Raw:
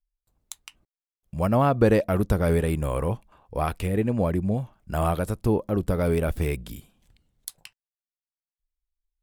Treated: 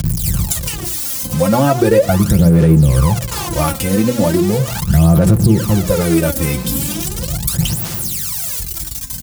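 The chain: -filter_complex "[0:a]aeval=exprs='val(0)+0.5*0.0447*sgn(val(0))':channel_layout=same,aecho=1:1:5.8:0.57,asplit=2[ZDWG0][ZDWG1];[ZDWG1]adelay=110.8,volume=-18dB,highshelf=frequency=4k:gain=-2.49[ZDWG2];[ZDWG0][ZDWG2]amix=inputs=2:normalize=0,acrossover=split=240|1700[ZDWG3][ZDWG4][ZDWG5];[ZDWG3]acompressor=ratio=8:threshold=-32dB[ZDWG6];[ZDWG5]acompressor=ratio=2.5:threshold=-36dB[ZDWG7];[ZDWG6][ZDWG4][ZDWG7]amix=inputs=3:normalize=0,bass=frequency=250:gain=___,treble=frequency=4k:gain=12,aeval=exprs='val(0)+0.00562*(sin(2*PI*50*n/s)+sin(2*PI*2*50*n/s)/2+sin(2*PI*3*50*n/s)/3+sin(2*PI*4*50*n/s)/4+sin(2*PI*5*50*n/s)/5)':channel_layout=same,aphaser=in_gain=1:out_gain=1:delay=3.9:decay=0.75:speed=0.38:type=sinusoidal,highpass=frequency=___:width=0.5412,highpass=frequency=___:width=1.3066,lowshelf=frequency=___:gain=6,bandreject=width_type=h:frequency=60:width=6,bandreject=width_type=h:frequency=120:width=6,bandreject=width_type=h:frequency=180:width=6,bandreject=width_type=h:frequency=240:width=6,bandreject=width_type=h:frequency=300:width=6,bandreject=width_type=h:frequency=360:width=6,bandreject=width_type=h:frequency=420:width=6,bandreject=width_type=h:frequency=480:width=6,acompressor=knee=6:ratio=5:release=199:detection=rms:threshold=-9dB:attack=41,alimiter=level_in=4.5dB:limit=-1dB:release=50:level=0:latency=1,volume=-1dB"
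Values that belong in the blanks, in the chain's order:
14, 70, 70, 140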